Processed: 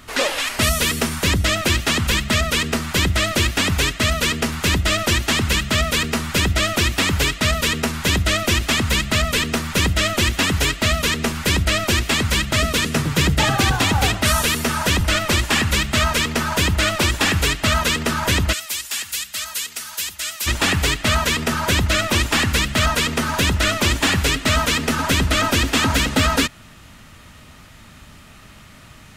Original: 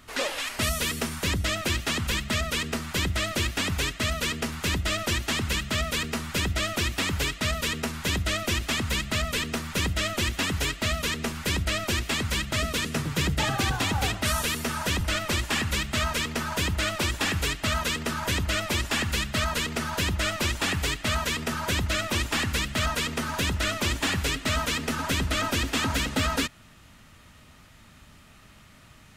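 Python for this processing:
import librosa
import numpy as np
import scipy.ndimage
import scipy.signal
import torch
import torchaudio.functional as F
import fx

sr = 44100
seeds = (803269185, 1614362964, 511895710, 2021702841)

y = fx.pre_emphasis(x, sr, coefficient=0.97, at=(18.52, 20.46), fade=0.02)
y = y * 10.0 ** (8.5 / 20.0)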